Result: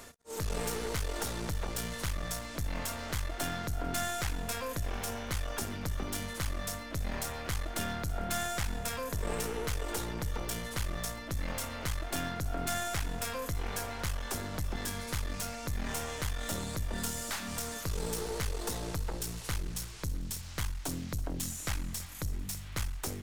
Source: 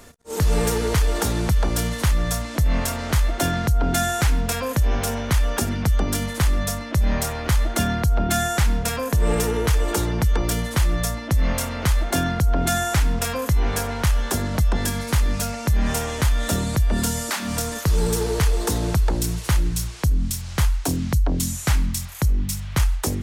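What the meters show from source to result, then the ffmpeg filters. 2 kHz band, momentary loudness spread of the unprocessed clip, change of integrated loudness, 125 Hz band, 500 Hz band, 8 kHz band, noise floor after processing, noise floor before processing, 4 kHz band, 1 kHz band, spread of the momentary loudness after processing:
−10.5 dB, 3 LU, −13.5 dB, −16.0 dB, −12.5 dB, −10.5 dB, −43 dBFS, −32 dBFS, −10.0 dB, −11.5 dB, 3 LU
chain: -af "lowshelf=frequency=410:gain=-6,areverse,acompressor=mode=upward:threshold=-31dB:ratio=2.5,areverse,aeval=exprs='clip(val(0),-1,0.0316)':channel_layout=same,aecho=1:1:330|660|990|1320|1650:0.126|0.0743|0.0438|0.0259|0.0153,volume=-8dB"

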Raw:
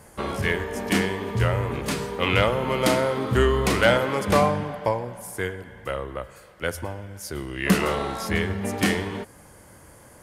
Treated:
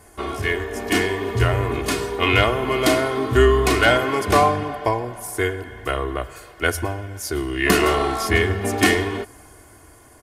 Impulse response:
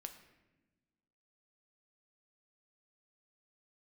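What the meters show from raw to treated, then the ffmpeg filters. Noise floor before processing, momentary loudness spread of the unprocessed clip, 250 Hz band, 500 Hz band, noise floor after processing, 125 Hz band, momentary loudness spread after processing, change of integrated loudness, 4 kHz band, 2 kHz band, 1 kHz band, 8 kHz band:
−50 dBFS, 14 LU, +2.5 dB, +4.0 dB, −48 dBFS, +2.5 dB, 12 LU, +4.0 dB, +5.0 dB, +5.5 dB, +5.0 dB, +5.0 dB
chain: -af "aecho=1:1:2.8:0.74,dynaudnorm=framelen=170:gausssize=13:maxgain=9.5dB,volume=-1dB"

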